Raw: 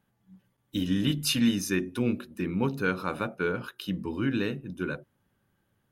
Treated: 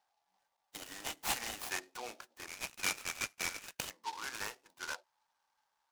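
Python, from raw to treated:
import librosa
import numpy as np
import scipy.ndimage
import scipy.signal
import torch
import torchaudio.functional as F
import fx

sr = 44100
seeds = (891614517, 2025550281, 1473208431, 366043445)

y = fx.tracing_dist(x, sr, depth_ms=0.1)
y = fx.ladder_highpass(y, sr, hz=fx.steps((0.0, 710.0), (2.46, 2300.0), (3.88, 810.0)), resonance_pct=70)
y = fx.dynamic_eq(y, sr, hz=2100.0, q=3.9, threshold_db=-56.0, ratio=4.0, max_db=5)
y = fx.noise_mod_delay(y, sr, seeds[0], noise_hz=3600.0, depth_ms=0.07)
y = F.gain(torch.from_numpy(y), 4.5).numpy()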